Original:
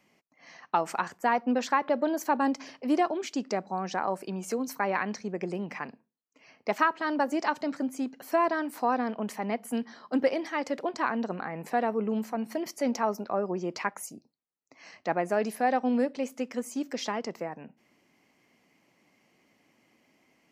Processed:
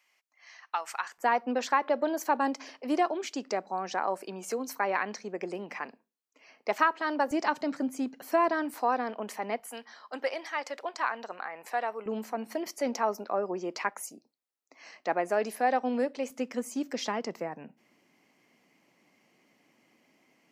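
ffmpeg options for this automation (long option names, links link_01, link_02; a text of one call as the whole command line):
ffmpeg -i in.wav -af "asetnsamples=nb_out_samples=441:pad=0,asendcmd='1.18 highpass f 320;7.31 highpass f 120;8.74 highpass f 340;9.6 highpass f 720;12.06 highpass f 300;16.3 highpass f 130',highpass=1200" out.wav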